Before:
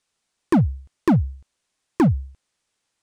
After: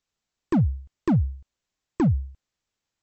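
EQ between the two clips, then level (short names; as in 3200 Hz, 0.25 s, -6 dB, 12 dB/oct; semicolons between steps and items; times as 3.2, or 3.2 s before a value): brick-wall FIR low-pass 8000 Hz; low shelf 98 Hz +7 dB; low shelf 320 Hz +4 dB; -8.0 dB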